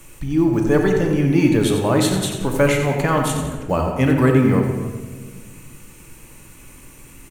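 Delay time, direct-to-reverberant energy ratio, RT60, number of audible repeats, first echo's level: 90 ms, 1.5 dB, 1.5 s, 1, -8.5 dB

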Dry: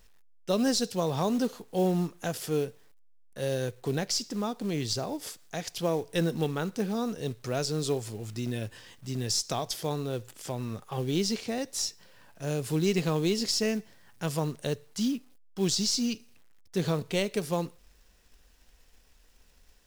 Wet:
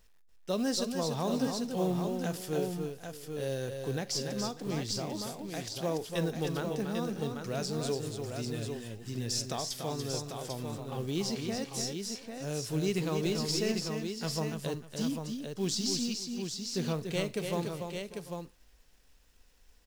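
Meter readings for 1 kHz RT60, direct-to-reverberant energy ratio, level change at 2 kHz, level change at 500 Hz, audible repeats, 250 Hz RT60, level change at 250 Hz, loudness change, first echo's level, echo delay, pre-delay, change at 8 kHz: none, none, -3.0 dB, -3.0 dB, 5, none, -3.0 dB, -3.5 dB, -18.0 dB, 44 ms, none, -3.0 dB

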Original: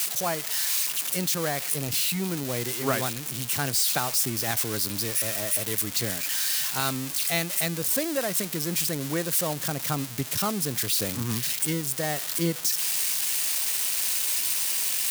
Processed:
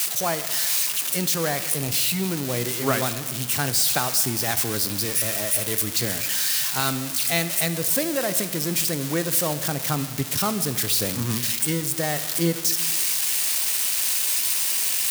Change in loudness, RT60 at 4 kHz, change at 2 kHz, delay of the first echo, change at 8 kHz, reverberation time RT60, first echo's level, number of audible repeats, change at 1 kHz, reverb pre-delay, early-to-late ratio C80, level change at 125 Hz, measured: +3.5 dB, 1.5 s, +3.5 dB, none, +3.5 dB, 1.6 s, none, none, +3.0 dB, 5 ms, 14.0 dB, +3.5 dB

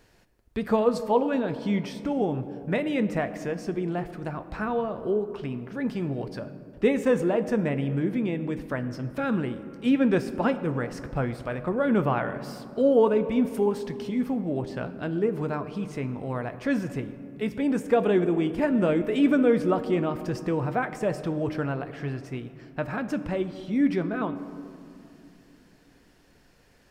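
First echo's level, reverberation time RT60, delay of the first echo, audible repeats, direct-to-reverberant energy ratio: none, 2.6 s, none, none, 10.0 dB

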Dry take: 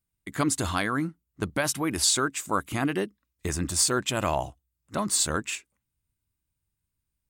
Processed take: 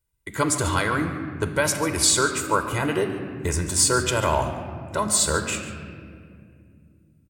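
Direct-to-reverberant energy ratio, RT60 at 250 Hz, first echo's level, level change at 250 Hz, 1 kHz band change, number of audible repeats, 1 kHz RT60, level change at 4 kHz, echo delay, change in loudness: 6.0 dB, 3.7 s, -15.0 dB, +2.0 dB, +5.0 dB, 1, 1.9 s, +3.0 dB, 0.143 s, +4.5 dB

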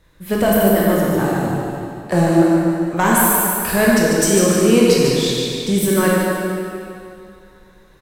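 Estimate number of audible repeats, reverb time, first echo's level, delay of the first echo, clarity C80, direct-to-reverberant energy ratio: 1, 2.5 s, -4.5 dB, 0.146 s, -2.5 dB, -5.5 dB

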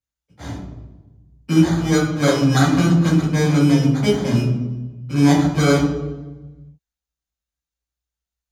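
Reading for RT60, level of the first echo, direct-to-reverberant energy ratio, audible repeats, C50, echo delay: 1.2 s, none, -5.0 dB, none, 4.0 dB, none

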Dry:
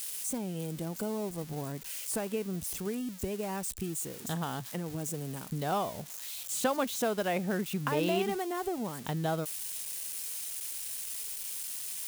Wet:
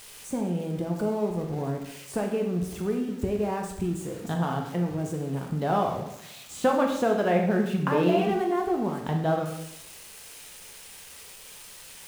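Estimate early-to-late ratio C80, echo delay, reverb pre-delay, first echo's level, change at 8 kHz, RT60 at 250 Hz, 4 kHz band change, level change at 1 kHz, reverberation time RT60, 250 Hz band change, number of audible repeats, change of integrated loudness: 8.5 dB, none, 5 ms, none, -6.5 dB, 0.80 s, -1.0 dB, +7.0 dB, 0.80 s, +8.0 dB, none, +6.5 dB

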